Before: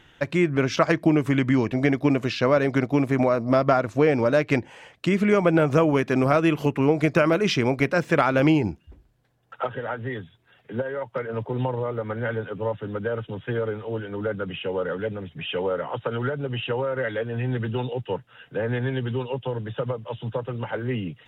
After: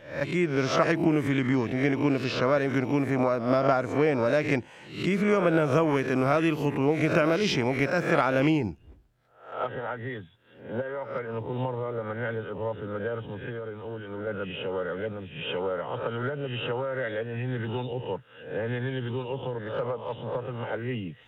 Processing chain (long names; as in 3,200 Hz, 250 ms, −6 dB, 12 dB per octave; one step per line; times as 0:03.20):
peak hold with a rise ahead of every peak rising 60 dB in 0.50 s
0:13.35–0:14.27: downward compressor, threshold −27 dBFS, peak gain reduction 6.5 dB
0:19.55–0:20.36: mid-hump overdrive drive 13 dB, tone 1,300 Hz, clips at −14 dBFS
level −5 dB